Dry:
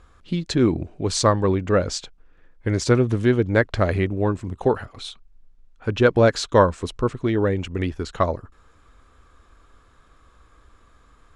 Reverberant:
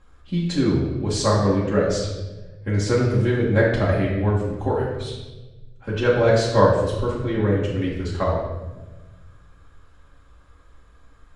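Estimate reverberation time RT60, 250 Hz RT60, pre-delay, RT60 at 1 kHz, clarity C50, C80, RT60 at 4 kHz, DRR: 1.2 s, 1.8 s, 4 ms, 0.95 s, 1.5 dB, 4.5 dB, 0.90 s, −7.0 dB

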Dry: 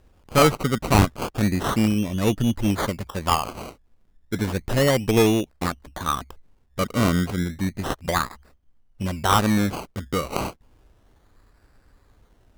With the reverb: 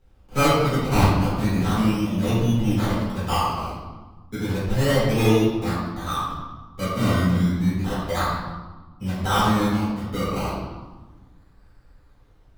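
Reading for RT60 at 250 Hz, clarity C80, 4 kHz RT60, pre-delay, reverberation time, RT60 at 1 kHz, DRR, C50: 1.8 s, 2.0 dB, 0.95 s, 3 ms, 1.3 s, 1.3 s, −12.5 dB, −0.5 dB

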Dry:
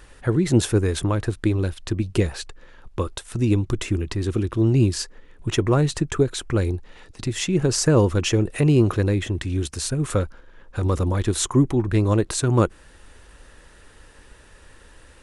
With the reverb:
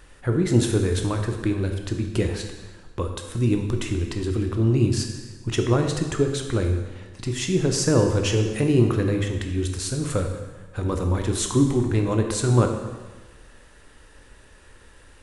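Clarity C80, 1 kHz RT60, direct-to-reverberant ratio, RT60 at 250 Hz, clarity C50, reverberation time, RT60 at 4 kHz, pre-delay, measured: 8.0 dB, 1.3 s, 3.5 dB, 1.2 s, 6.0 dB, 1.3 s, 1.2 s, 7 ms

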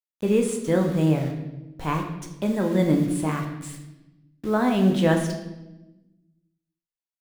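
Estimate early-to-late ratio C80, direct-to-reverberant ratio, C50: 8.5 dB, 2.5 dB, 6.5 dB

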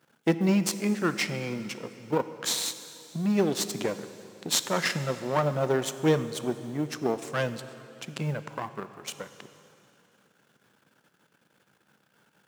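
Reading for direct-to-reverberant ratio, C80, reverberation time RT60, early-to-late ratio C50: 11.0 dB, 12.5 dB, 2.9 s, 12.0 dB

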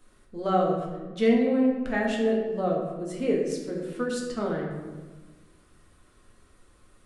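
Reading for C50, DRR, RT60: 3.0 dB, −2.5 dB, 1.3 s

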